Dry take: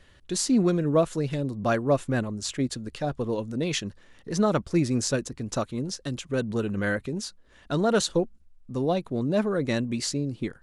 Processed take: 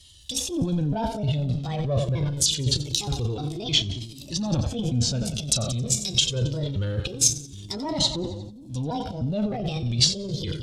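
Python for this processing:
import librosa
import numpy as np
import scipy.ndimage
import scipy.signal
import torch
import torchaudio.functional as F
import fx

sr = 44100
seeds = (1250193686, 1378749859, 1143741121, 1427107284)

y = fx.pitch_trill(x, sr, semitones=5.5, every_ms=307)
y = fx.leveller(y, sr, passes=1)
y = scipy.signal.sosfilt(scipy.signal.butter(2, 53.0, 'highpass', fs=sr, output='sos'), y)
y = fx.high_shelf(y, sr, hz=5400.0, db=4.5)
y = fx.doubler(y, sr, ms=33.0, db=-13.0)
y = fx.env_lowpass_down(y, sr, base_hz=1300.0, full_db=-19.5)
y = fx.echo_split(y, sr, split_hz=350.0, low_ms=768, high_ms=89, feedback_pct=52, wet_db=-14.5)
y = fx.transient(y, sr, attack_db=-3, sustain_db=11)
y = fx.curve_eq(y, sr, hz=(120.0, 210.0, 1900.0, 3300.0), db=(0, -9, -18, 9))
y = fx.comb_cascade(y, sr, direction='falling', hz=0.25)
y = y * librosa.db_to_amplitude(8.0)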